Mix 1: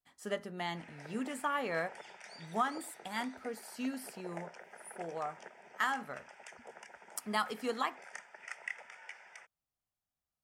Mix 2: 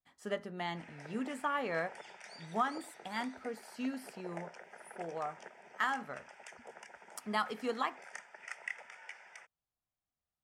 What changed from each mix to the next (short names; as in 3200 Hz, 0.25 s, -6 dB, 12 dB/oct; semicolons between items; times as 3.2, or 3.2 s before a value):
speech: add high shelf 6700 Hz -10 dB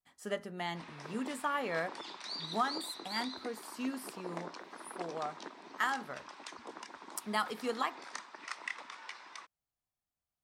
speech: add high shelf 6700 Hz +10 dB; background: remove fixed phaser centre 1100 Hz, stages 6